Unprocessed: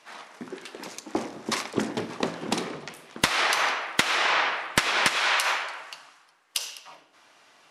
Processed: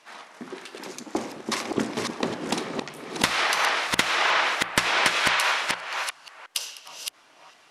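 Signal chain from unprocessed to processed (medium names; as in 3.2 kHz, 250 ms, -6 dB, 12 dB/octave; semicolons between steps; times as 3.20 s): chunks repeated in reverse 359 ms, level -4 dB; hum notches 60/120/180 Hz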